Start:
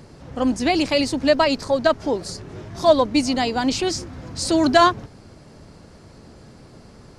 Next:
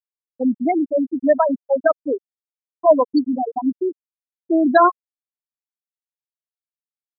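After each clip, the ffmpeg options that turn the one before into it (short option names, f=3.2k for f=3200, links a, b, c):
-af "afftfilt=real='re*gte(hypot(re,im),0.562)':imag='im*gte(hypot(re,im),0.562)':win_size=1024:overlap=0.75,volume=2dB"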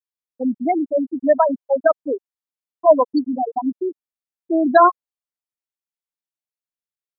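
-af "adynamicequalizer=threshold=0.0447:dfrequency=860:dqfactor=1:tfrequency=860:tqfactor=1:attack=5:release=100:ratio=0.375:range=2.5:mode=boostabove:tftype=bell,volume=-2.5dB"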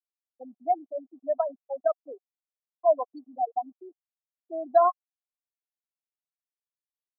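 -filter_complex "[0:a]asplit=3[a][b][c];[a]bandpass=f=730:t=q:w=8,volume=0dB[d];[b]bandpass=f=1.09k:t=q:w=8,volume=-6dB[e];[c]bandpass=f=2.44k:t=q:w=8,volume=-9dB[f];[d][e][f]amix=inputs=3:normalize=0,volume=-3.5dB"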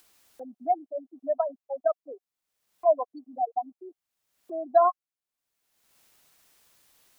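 -af "acompressor=mode=upward:threshold=-36dB:ratio=2.5"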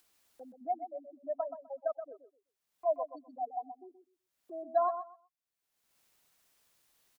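-af "aecho=1:1:126|252|378:0.335|0.0603|0.0109,volume=-9dB"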